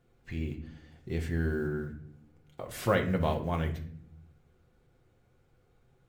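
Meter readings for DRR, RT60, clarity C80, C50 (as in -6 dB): 2.5 dB, 0.65 s, 15.0 dB, 11.0 dB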